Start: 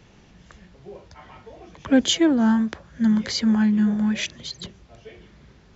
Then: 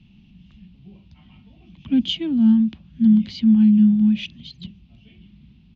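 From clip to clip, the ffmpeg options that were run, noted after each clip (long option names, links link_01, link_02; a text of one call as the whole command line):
ffmpeg -i in.wav -af "firequalizer=gain_entry='entry(120,0);entry(200,7);entry(460,-25);entry(730,-16);entry(1700,-21);entry(2700,1);entry(7000,-26)':delay=0.05:min_phase=1" out.wav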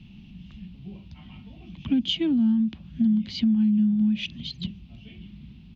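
ffmpeg -i in.wav -af "acompressor=threshold=-26dB:ratio=4,volume=4.5dB" out.wav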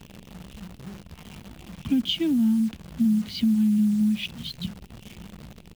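ffmpeg -i in.wav -af "acrusher=bits=8:dc=4:mix=0:aa=0.000001" out.wav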